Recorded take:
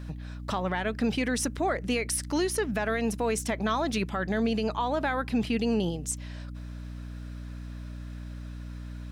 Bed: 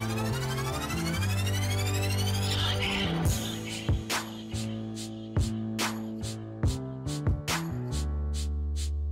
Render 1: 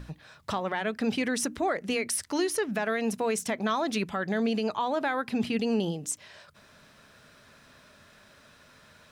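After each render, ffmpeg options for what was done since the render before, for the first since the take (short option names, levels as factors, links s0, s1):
-af "bandreject=f=60:t=h:w=6,bandreject=f=120:t=h:w=6,bandreject=f=180:t=h:w=6,bandreject=f=240:t=h:w=6,bandreject=f=300:t=h:w=6"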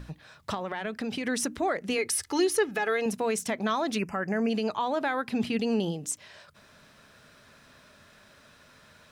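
-filter_complex "[0:a]asettb=1/sr,asplit=3[s0][s1][s2];[s0]atrim=end=0.544[s3];[s1]atrim=start=0.54:end=1.27,asetpts=PTS-STARTPTS,afade=t=in:d=0.004:c=qsin,afade=t=out:st=0.726:d=0.004:c=qsin,acompressor=threshold=0.0398:ratio=6:attack=3.2:release=140:knee=1:detection=peak[s4];[s2]atrim=start=1.266[s5];[s3][s4]acrossfade=d=0.004:c1=hsin:c2=qsin[s6];[s6][s5]acrossfade=d=0.004:c1=qsin:c2=hsin,asettb=1/sr,asplit=3[s7][s8][s9];[s7]atrim=end=1.984[s10];[s8]atrim=start=1.98:end=3.06,asetpts=PTS-STARTPTS,afade=t=in:d=0.004:c=qsin,afade=t=out:st=1.076:d=0.004:c=qsin,aecho=1:1:2.4:0.65,atrim=end_sample=47628[s11];[s9]atrim=start=3.056[s12];[s10][s11]acrossfade=d=0.004:c1=hsin:c2=qsin[s13];[s13][s12]acrossfade=d=0.004:c1=qsin:c2=hsin,asplit=3[s14][s15][s16];[s14]afade=t=out:st=3.97:d=0.02[s17];[s15]asuperstop=centerf=3700:order=12:qfactor=2,afade=t=in:st=3.97:d=0.02,afade=t=out:st=4.49:d=0.02[s18];[s16]afade=t=in:st=4.49:d=0.02[s19];[s17][s18][s19]amix=inputs=3:normalize=0"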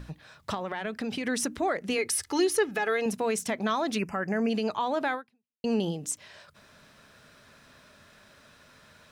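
-filter_complex "[0:a]asplit=2[s0][s1];[s0]atrim=end=5.64,asetpts=PTS-STARTPTS,afade=t=out:st=5.14:d=0.5:c=exp[s2];[s1]atrim=start=5.64,asetpts=PTS-STARTPTS,afade=t=in:d=0.004:c=hsin[s3];[s2][s3]concat=n=2:v=0:a=1"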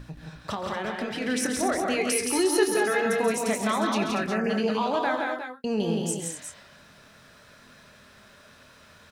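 -filter_complex "[0:a]asplit=2[s0][s1];[s1]adelay=24,volume=0.316[s2];[s0][s2]amix=inputs=2:normalize=0,asplit=2[s3][s4];[s4]aecho=0:1:91|134|171|234|356|372:0.112|0.355|0.668|0.376|0.335|0.251[s5];[s3][s5]amix=inputs=2:normalize=0"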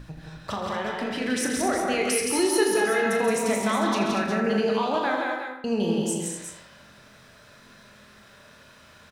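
-filter_complex "[0:a]asplit=2[s0][s1];[s1]adelay=39,volume=0.376[s2];[s0][s2]amix=inputs=2:normalize=0,asplit=2[s3][s4];[s4]adelay=81,lowpass=f=4400:p=1,volume=0.398,asplit=2[s5][s6];[s6]adelay=81,lowpass=f=4400:p=1,volume=0.49,asplit=2[s7][s8];[s8]adelay=81,lowpass=f=4400:p=1,volume=0.49,asplit=2[s9][s10];[s10]adelay=81,lowpass=f=4400:p=1,volume=0.49,asplit=2[s11][s12];[s12]adelay=81,lowpass=f=4400:p=1,volume=0.49,asplit=2[s13][s14];[s14]adelay=81,lowpass=f=4400:p=1,volume=0.49[s15];[s3][s5][s7][s9][s11][s13][s15]amix=inputs=7:normalize=0"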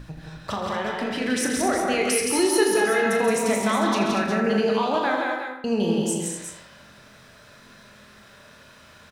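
-af "volume=1.26"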